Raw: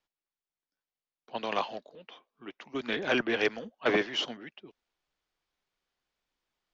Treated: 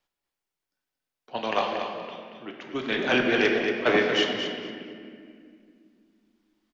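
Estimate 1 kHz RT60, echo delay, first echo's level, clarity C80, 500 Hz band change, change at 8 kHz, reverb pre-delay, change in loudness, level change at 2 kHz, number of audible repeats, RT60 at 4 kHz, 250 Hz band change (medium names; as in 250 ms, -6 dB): 1.9 s, 230 ms, -7.5 dB, 3.0 dB, +6.5 dB, no reading, 5 ms, +5.5 dB, +6.5 dB, 2, 1.4 s, +7.0 dB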